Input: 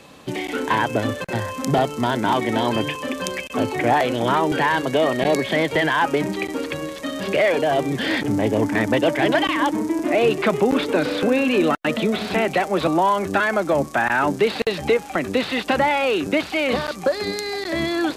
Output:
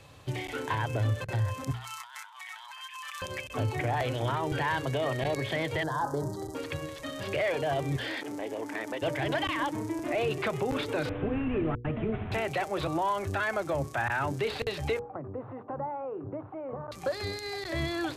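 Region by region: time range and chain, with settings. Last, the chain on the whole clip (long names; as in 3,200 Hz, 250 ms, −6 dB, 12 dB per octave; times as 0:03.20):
0:01.71–0:03.22: Butterworth high-pass 930 Hz 48 dB per octave + compressor whose output falls as the input rises −36 dBFS
0:05.83–0:06.55: Butterworth band-reject 2,500 Hz, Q 0.7 + hum removal 50.99 Hz, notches 37
0:07.96–0:09.02: high-pass filter 270 Hz 24 dB per octave + downward compressor 3 to 1, threshold −22 dBFS
0:11.09–0:12.32: variable-slope delta modulation 16 kbit/s + tilt shelving filter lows +6 dB, about 640 Hz + notch filter 540 Hz, Q 5.2
0:14.99–0:16.92: elliptic band-pass filter 110–1,100 Hz, stop band 60 dB + downward compressor 1.5 to 1, threshold −32 dBFS
whole clip: low shelf with overshoot 150 Hz +9 dB, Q 3; mains-hum notches 60/120/180/240/300/360/420/480 Hz; brickwall limiter −12.5 dBFS; level −8.5 dB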